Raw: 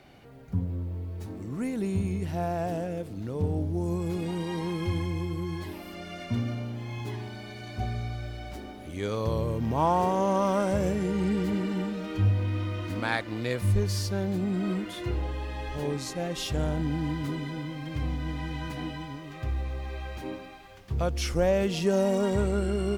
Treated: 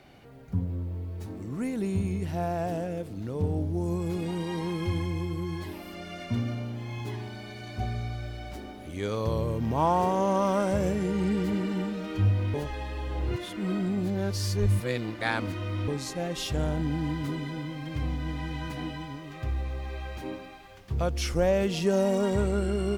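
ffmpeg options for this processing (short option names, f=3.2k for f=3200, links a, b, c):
-filter_complex "[0:a]asplit=3[a][b][c];[a]atrim=end=12.542[d];[b]atrim=start=12.538:end=15.882,asetpts=PTS-STARTPTS,areverse[e];[c]atrim=start=15.878[f];[d][e]acrossfade=d=0.004:c1=hsin:c2=hsin[g];[g][f]acrossfade=d=0.004:c1=hsin:c2=hsin"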